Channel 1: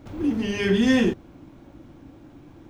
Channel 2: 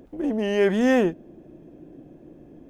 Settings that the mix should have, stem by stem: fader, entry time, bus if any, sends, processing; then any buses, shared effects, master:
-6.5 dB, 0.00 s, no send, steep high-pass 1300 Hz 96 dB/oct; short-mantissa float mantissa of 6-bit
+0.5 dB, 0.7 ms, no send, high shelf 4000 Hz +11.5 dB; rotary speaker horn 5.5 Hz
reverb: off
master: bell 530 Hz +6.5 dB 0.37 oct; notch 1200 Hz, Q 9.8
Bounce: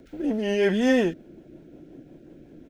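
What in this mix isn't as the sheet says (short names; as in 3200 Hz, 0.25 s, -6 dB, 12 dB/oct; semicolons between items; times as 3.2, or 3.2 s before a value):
stem 2: missing high shelf 4000 Hz +11.5 dB; master: missing bell 530 Hz +6.5 dB 0.37 oct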